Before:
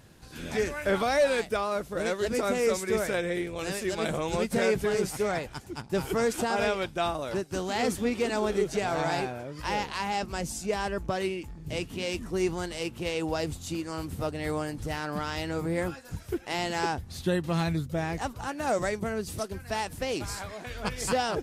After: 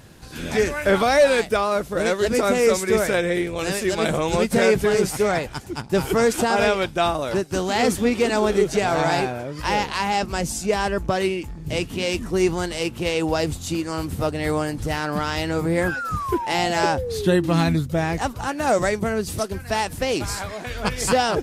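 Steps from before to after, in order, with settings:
sound drawn into the spectrogram fall, 0:15.83–0:17.76, 240–1,700 Hz −36 dBFS
level +8 dB

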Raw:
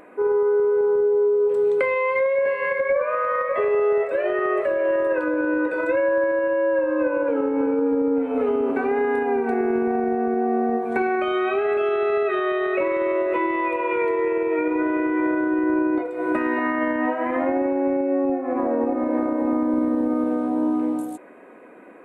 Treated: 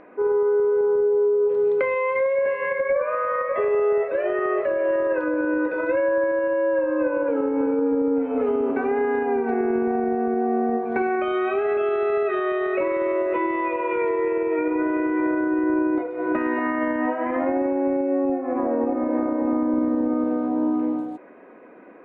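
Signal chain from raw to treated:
high-frequency loss of the air 260 metres

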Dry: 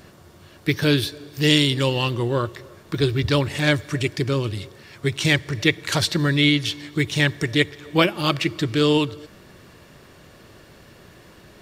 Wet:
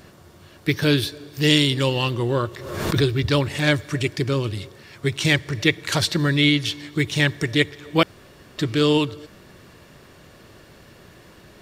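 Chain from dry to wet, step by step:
0:02.25–0:03.09: background raised ahead of every attack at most 48 dB per second
0:08.03–0:08.58: fill with room tone

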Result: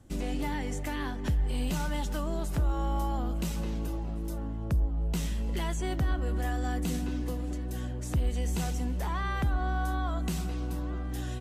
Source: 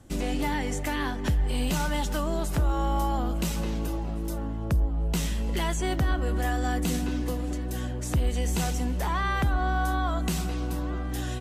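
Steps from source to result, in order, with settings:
low-shelf EQ 320 Hz +4 dB
level −6.5 dB

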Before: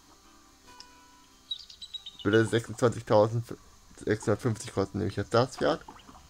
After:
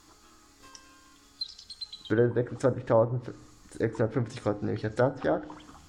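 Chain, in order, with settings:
treble cut that deepens with the level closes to 870 Hz, closed at −21 dBFS
speed change +7%
feedback delay network reverb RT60 0.7 s, low-frequency decay 1.55×, high-frequency decay 0.8×, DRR 14.5 dB

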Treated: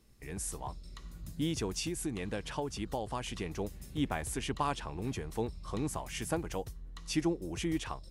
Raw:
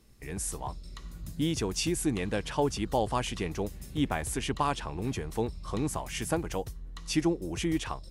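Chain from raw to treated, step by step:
0:01.74–0:03.58: downward compressor, threshold −28 dBFS, peak gain reduction 6.5 dB
level −4 dB

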